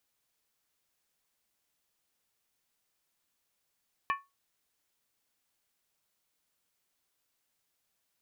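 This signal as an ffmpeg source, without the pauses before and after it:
ffmpeg -f lavfi -i "aevalsrc='0.0631*pow(10,-3*t/0.22)*sin(2*PI*1110*t)+0.0355*pow(10,-3*t/0.174)*sin(2*PI*1769.3*t)+0.02*pow(10,-3*t/0.151)*sin(2*PI*2371*t)+0.0112*pow(10,-3*t/0.145)*sin(2*PI*2548.6*t)+0.00631*pow(10,-3*t/0.135)*sin(2*PI*2944.8*t)':duration=0.63:sample_rate=44100" out.wav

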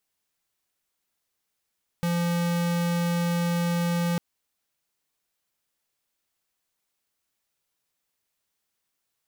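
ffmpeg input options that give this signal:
ffmpeg -f lavfi -i "aevalsrc='0.0562*(2*lt(mod(172*t,1),0.5)-1)':duration=2.15:sample_rate=44100" out.wav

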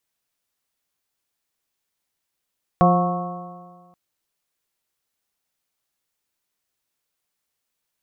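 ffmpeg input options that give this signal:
ffmpeg -f lavfi -i "aevalsrc='0.2*pow(10,-3*t/1.63)*sin(2*PI*175.24*t)+0.0708*pow(10,-3*t/1.63)*sin(2*PI*351.95*t)+0.1*pow(10,-3*t/1.63)*sin(2*PI*531.57*t)+0.188*pow(10,-3*t/1.63)*sin(2*PI*715.51*t)+0.0251*pow(10,-3*t/1.63)*sin(2*PI*905.11*t)+0.133*pow(10,-3*t/1.63)*sin(2*PI*1101.65*t)+0.0224*pow(10,-3*t/1.63)*sin(2*PI*1306.33*t)':duration=1.13:sample_rate=44100" out.wav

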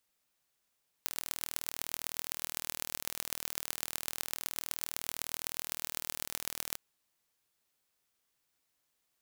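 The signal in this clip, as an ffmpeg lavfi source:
ffmpeg -f lavfi -i "aevalsrc='0.531*eq(mod(n,1111),0)*(0.5+0.5*eq(mod(n,5555),0))':duration=5.71:sample_rate=44100" out.wav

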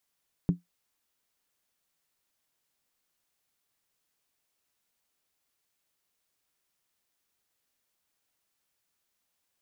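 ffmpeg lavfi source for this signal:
ffmpeg -f lavfi -i "aevalsrc='0.158*pow(10,-3*t/0.15)*sin(2*PI*175*t)+0.0501*pow(10,-3*t/0.119)*sin(2*PI*278.9*t)+0.0158*pow(10,-3*t/0.103)*sin(2*PI*373.8*t)+0.00501*pow(10,-3*t/0.099)*sin(2*PI*401.8*t)+0.00158*pow(10,-3*t/0.092)*sin(2*PI*464.3*t)':duration=0.63:sample_rate=44100" out.wav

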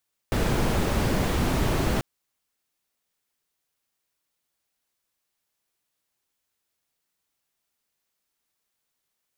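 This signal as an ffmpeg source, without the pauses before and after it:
ffmpeg -f lavfi -i "anoisesrc=color=brown:amplitude=0.331:duration=1.69:sample_rate=44100:seed=1" out.wav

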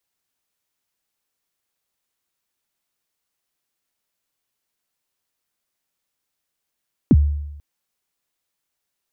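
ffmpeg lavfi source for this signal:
ffmpeg -f lavfi -i "aevalsrc='0.473*pow(10,-3*t/0.95)*sin(2*PI*(330*0.043/log(73/330)*(exp(log(73/330)*min(t,0.043)/0.043)-1)+73*max(t-0.043,0)))':duration=0.49:sample_rate=44100" out.wav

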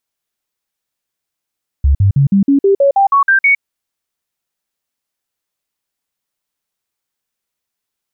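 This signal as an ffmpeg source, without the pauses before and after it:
ffmpeg -f lavfi -i "aevalsrc='0.473*clip(min(mod(t,0.16),0.11-mod(t,0.16))/0.005,0,1)*sin(2*PI*69.7*pow(2,floor(t/0.16)/2)*mod(t,0.16))':duration=1.76:sample_rate=44100" out.wav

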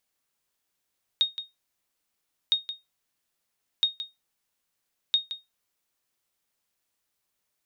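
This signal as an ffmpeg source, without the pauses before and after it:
ffmpeg -f lavfi -i "aevalsrc='0.2*(sin(2*PI*3720*mod(t,1.31))*exp(-6.91*mod(t,1.31)/0.19)+0.251*sin(2*PI*3720*max(mod(t,1.31)-0.17,0))*exp(-6.91*max(mod(t,1.31)-0.17,0)/0.19))':duration=5.24:sample_rate=44100" out.wav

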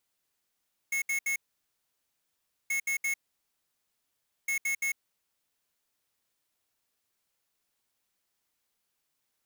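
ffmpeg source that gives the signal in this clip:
ffmpeg -f lavfi -i "aevalsrc='0.0335*(2*lt(mod(2180*t,1),0.5)-1)*clip(min(mod(mod(t,1.78),0.17),0.1-mod(mod(t,1.78),0.17))/0.005,0,1)*lt(mod(t,1.78),0.51)':duration=5.34:sample_rate=44100" out.wav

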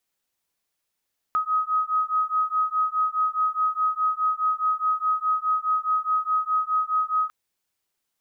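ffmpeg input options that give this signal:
ffmpeg -f lavfi -i "aevalsrc='0.0631*(sin(2*PI*1260*t)+sin(2*PI*1264.8*t))':duration=5.95:sample_rate=44100" out.wav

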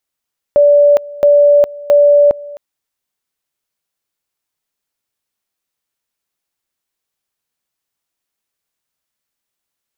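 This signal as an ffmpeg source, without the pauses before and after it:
ffmpeg -f lavfi -i "aevalsrc='pow(10,(-4.5-21.5*gte(mod(t,0.67),0.41))/20)*sin(2*PI*580*t)':duration=2.01:sample_rate=44100" out.wav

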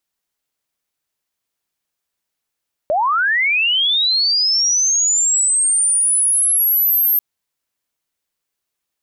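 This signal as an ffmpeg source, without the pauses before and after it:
ffmpeg -f lavfi -i "aevalsrc='pow(10,(-13.5+1.5*t/4.29)/20)*sin(2*PI*(570*t+12430*t*t/(2*4.29)))':duration=4.29:sample_rate=44100" out.wav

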